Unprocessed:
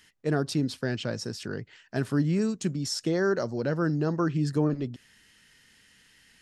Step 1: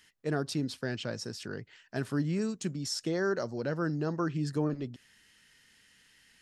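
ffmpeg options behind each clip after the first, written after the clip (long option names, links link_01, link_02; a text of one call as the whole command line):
ffmpeg -i in.wav -af "lowshelf=frequency=480:gain=-3,volume=-3dB" out.wav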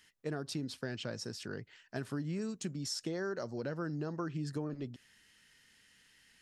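ffmpeg -i in.wav -af "acompressor=threshold=-31dB:ratio=6,volume=-2.5dB" out.wav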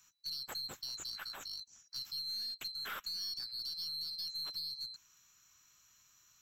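ffmpeg -i in.wav -filter_complex "[0:a]afftfilt=real='real(if(lt(b,736),b+184*(1-2*mod(floor(b/184),2)),b),0)':imag='imag(if(lt(b,736),b+184*(1-2*mod(floor(b/184),2)),b),0)':win_size=2048:overlap=0.75,aeval=exprs='(tanh(50.1*val(0)+0.15)-tanh(0.15))/50.1':channel_layout=same,acrossover=split=260|900[link_01][link_02][link_03];[link_02]aeval=exprs='val(0)*gte(abs(val(0)),0.0015)':channel_layout=same[link_04];[link_01][link_04][link_03]amix=inputs=3:normalize=0,volume=-1dB" out.wav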